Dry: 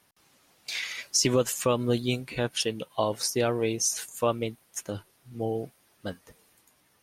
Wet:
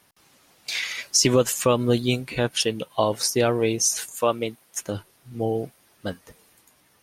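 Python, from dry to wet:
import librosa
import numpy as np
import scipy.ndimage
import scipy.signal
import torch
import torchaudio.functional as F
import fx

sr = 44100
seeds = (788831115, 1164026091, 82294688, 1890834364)

y = fx.highpass(x, sr, hz=fx.line((4.14, 350.0), (4.78, 150.0)), slope=6, at=(4.14, 4.78), fade=0.02)
y = F.gain(torch.from_numpy(y), 5.0).numpy()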